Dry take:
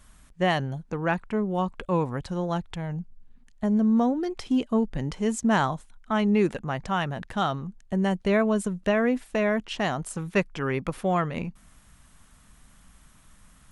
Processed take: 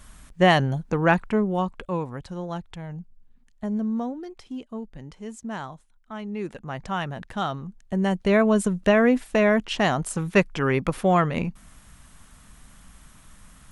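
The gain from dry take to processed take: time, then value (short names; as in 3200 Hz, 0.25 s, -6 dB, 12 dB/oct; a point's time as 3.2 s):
1.2 s +6.5 dB
2.04 s -4 dB
3.77 s -4 dB
4.53 s -11 dB
6.31 s -11 dB
6.82 s -1.5 dB
7.59 s -1.5 dB
8.65 s +5 dB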